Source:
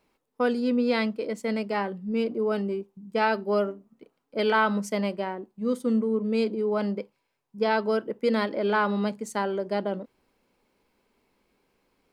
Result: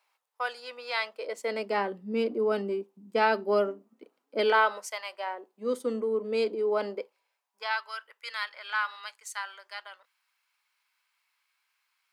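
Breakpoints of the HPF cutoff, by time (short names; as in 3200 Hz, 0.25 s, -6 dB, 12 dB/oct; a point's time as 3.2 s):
HPF 24 dB/oct
0.97 s 750 Hz
1.77 s 240 Hz
4.38 s 240 Hz
5.03 s 960 Hz
5.62 s 310 Hz
6.87 s 310 Hz
7.84 s 1200 Hz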